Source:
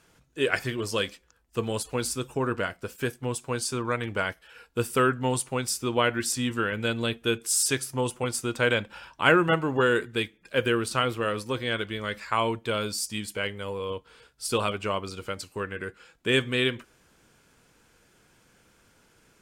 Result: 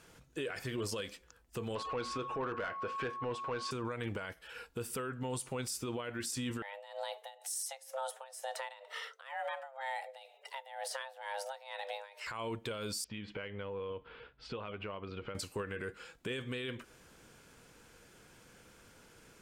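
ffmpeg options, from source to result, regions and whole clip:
ffmpeg -i in.wav -filter_complex "[0:a]asettb=1/sr,asplit=3[link_01][link_02][link_03];[link_01]atrim=end=1.754[link_04];[link_02]atrim=start=1.75:end=3.71,asetpts=PTS-STARTPTS,afade=type=in:duration=0.004:curve=qsin,afade=type=out:start_time=1.956:duration=0.004:curve=qsin,lowpass=3400,asplit=2[link_05][link_06];[link_06]highpass=frequency=720:poles=1,volume=16dB,asoftclip=type=tanh:threshold=-14dB[link_07];[link_05][link_07]amix=inputs=2:normalize=0,lowpass=frequency=2300:poles=1,volume=-6dB,aeval=exprs='val(0)+0.0178*sin(2*PI*1100*n/s)':channel_layout=same[link_08];[link_03]atrim=start=3.706[link_09];[link_04][link_08]acrossfade=duration=0.004:curve1=hsin:curve2=qsin[link_10];[link_10][link_09]acrossfade=duration=0.004:curve1=qsin:curve2=hsin,asettb=1/sr,asplit=3[link_11][link_12][link_13];[link_11]atrim=end=6.624[link_14];[link_12]atrim=start=6.62:end=12.27,asetpts=PTS-STARTPTS,afade=type=in:duration=0.004:curve=qsin,afade=type=out:start_time=5.646:duration=0.004:curve=qsin,acompressor=threshold=-37dB:ratio=4:attack=3.2:release=140:knee=1:detection=peak,afreqshift=400,tremolo=f=2.1:d=0.87[link_15];[link_13]atrim=start=12.266[link_16];[link_14][link_15]acrossfade=duration=0.004:curve1=hsin:curve2=qsin[link_17];[link_17][link_16]acrossfade=duration=0.004:curve1=qsin:curve2=hsin,asettb=1/sr,asplit=3[link_18][link_19][link_20];[link_18]atrim=end=13.044[link_21];[link_19]atrim=start=13.04:end=15.35,asetpts=PTS-STARTPTS,afade=type=in:duration=0.004:curve=qsin,afade=type=out:start_time=2.306:duration=0.004:curve=qsin,lowpass=frequency=3100:width=0.5412,lowpass=frequency=3100:width=1.3066,acompressor=threshold=-40dB:ratio=10:attack=3.2:release=140:knee=1:detection=peak[link_22];[link_20]atrim=start=15.346[link_23];[link_21][link_22]acrossfade=duration=0.004:curve1=hsin:curve2=qsin[link_24];[link_24][link_23]acrossfade=duration=0.004:curve1=qsin:curve2=hsin,equalizer=frequency=490:width=5.4:gain=3,acompressor=threshold=-32dB:ratio=6,alimiter=level_in=7dB:limit=-24dB:level=0:latency=1:release=32,volume=-7dB,volume=1.5dB" out.wav

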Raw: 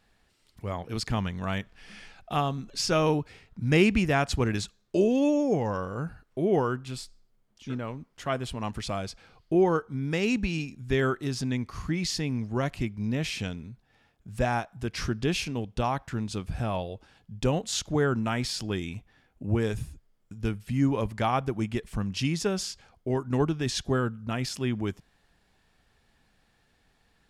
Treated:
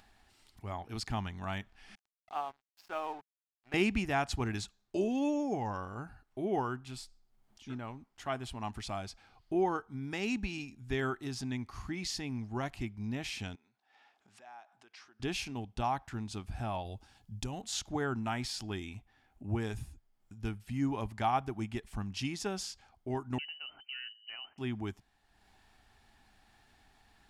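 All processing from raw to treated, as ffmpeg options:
ffmpeg -i in.wav -filter_complex "[0:a]asettb=1/sr,asplit=3[link_01][link_02][link_03];[link_01]atrim=end=1.954[link_04];[link_02]atrim=start=1.95:end=3.74,asetpts=PTS-STARTPTS,afade=type=in:duration=0.004:curve=qsin,afade=type=out:start_time=1.786:duration=0.004:curve=qsin,highpass=620,lowpass=3400,highshelf=frequency=2200:gain=-12,aeval=exprs='sgn(val(0))*max(abs(val(0))-0.00501,0)':channel_layout=same[link_05];[link_03]atrim=start=3.736[link_06];[link_04][link_05]acrossfade=duration=0.004:curve1=hsin:curve2=qsin[link_07];[link_07][link_06]acrossfade=duration=0.004:curve1=qsin:curve2=hsin,asettb=1/sr,asplit=3[link_08][link_09][link_10];[link_08]atrim=end=13.554[link_11];[link_09]atrim=start=13.55:end=15.2,asetpts=PTS-STARTPTS,afade=type=in:duration=0.004:curve=qsin,afade=type=out:start_time=1.646:duration=0.004:curve=qsin,acompressor=threshold=-45dB:ratio=4:attack=3.2:release=140:knee=1:detection=peak,highpass=530,lowpass=6100[link_12];[link_10]atrim=start=15.196[link_13];[link_11][link_12]acrossfade=duration=0.004:curve1=hsin:curve2=qsin[link_14];[link_14][link_13]acrossfade=duration=0.004:curve1=qsin:curve2=hsin,asettb=1/sr,asplit=3[link_15][link_16][link_17];[link_15]atrim=end=16.854[link_18];[link_16]atrim=start=16.85:end=17.62,asetpts=PTS-STARTPTS,afade=type=in:duration=0.004:curve=qsin,afade=type=out:start_time=0.766:duration=0.004:curve=qsin,bass=frequency=250:gain=6,treble=frequency=4000:gain=9,acompressor=threshold=-25dB:ratio=6:attack=3.2:release=140:knee=1:detection=peak[link_19];[link_17]atrim=start=17.616[link_20];[link_18][link_19]acrossfade=duration=0.004:curve1=hsin:curve2=qsin[link_21];[link_21][link_20]acrossfade=duration=0.004:curve1=qsin:curve2=hsin,asettb=1/sr,asplit=3[link_22][link_23][link_24];[link_22]atrim=end=23.384[link_25];[link_23]atrim=start=23.38:end=24.58,asetpts=PTS-STARTPTS,afade=type=in:duration=0.004:curve=qsin,afade=type=out:start_time=1.196:duration=0.004:curve=qsin,agate=range=-13dB:threshold=-36dB:ratio=16:release=100:detection=peak,acompressor=threshold=-38dB:ratio=2.5:attack=3.2:release=140:knee=1:detection=peak,lowpass=frequency=2600:width_type=q:width=0.5098,lowpass=frequency=2600:width_type=q:width=0.6013,lowpass=frequency=2600:width_type=q:width=0.9,lowpass=frequency=2600:width_type=q:width=2.563,afreqshift=-3100[link_26];[link_24]atrim=start=24.576[link_27];[link_25][link_26]acrossfade=duration=0.004:curve1=hsin:curve2=qsin[link_28];[link_28][link_27]acrossfade=duration=0.004:curve1=qsin:curve2=hsin,equalizer=frequency=160:width_type=o:width=0.33:gain=-10,equalizer=frequency=500:width_type=o:width=0.33:gain=-11,equalizer=frequency=800:width_type=o:width=0.33:gain=7,acompressor=mode=upward:threshold=-48dB:ratio=2.5,volume=-6.5dB" out.wav

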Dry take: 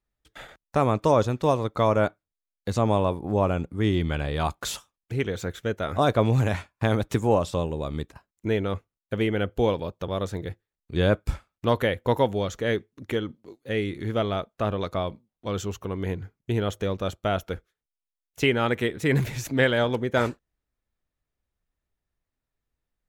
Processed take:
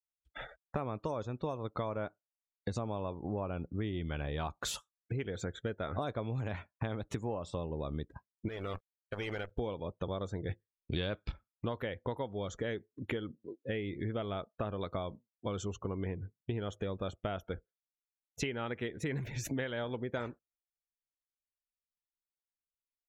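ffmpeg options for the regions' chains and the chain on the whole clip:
ffmpeg -i in.wav -filter_complex "[0:a]asettb=1/sr,asplit=3[link_01][link_02][link_03];[link_01]atrim=end=8.484[link_04];[link_02]atrim=start=8.48:end=9.51,asetpts=PTS-STARTPTS,afade=type=in:duration=0.004:curve=qsin,afade=type=out:start_time=1.026:duration=0.004:curve=qsin,equalizer=frequency=200:width=0.62:gain=-13,acompressor=threshold=-32dB:ratio=6:attack=3.2:release=140:knee=1:detection=peak,acrusher=bits=7:dc=4:mix=0:aa=0.000001[link_05];[link_03]atrim=start=9.506[link_06];[link_04][link_05]acrossfade=duration=0.004:curve1=hsin:curve2=qsin[link_07];[link_07][link_06]acrossfade=duration=0.004:curve1=qsin:curve2=hsin,asettb=1/sr,asplit=3[link_08][link_09][link_10];[link_08]atrim=end=10.494[link_11];[link_09]atrim=start=10.49:end=11.32,asetpts=PTS-STARTPTS,afade=type=in:duration=0.004:curve=qsin,afade=type=out:start_time=0.826:duration=0.004:curve=qsin,highshelf=frequency=2100:gain=5,acontrast=68,lowpass=frequency=3700:width_type=q:width=1.9[link_12];[link_10]atrim=start=11.316[link_13];[link_11][link_12]acrossfade=duration=0.004:curve1=hsin:curve2=qsin[link_14];[link_14][link_13]acrossfade=duration=0.004:curve1=qsin:curve2=hsin,afftdn=noise_reduction=29:noise_floor=-44,acompressor=threshold=-33dB:ratio=12" out.wav

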